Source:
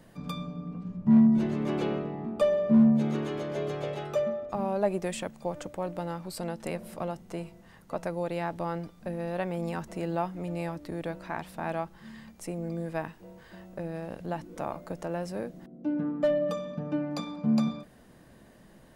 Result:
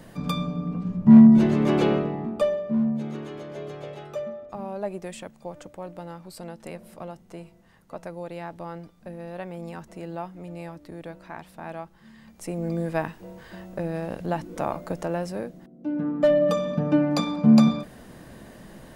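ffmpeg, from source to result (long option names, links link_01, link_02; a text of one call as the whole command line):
ffmpeg -i in.wav -af "volume=31dB,afade=type=out:start_time=1.92:duration=0.72:silence=0.237137,afade=type=in:start_time=12.18:duration=0.52:silence=0.298538,afade=type=out:start_time=14.96:duration=0.79:silence=0.375837,afade=type=in:start_time=15.75:duration=0.98:silence=0.251189" out.wav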